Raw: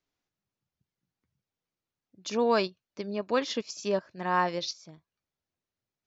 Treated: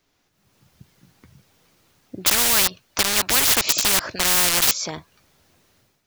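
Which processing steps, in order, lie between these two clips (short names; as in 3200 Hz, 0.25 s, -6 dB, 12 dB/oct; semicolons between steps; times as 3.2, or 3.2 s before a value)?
AGC gain up to 14 dB; in parallel at -4 dB: bit-crush 4-bit; on the sum: spectral compressor 10:1; gain -4 dB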